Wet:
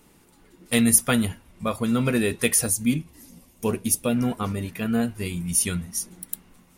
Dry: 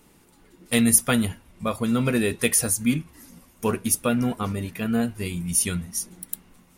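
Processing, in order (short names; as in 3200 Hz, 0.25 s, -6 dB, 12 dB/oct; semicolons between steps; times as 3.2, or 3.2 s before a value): 2.66–4.16 bell 1400 Hz -8.5 dB 0.99 oct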